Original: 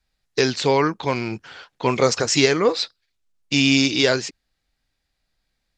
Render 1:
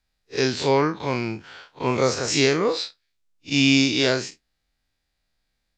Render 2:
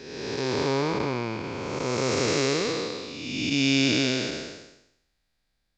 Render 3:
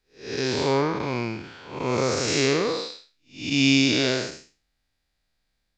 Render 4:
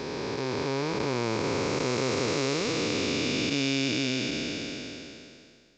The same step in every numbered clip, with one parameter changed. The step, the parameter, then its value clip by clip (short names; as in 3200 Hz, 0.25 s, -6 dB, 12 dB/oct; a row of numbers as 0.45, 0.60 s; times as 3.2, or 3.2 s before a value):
time blur, width: 82, 609, 245, 1500 ms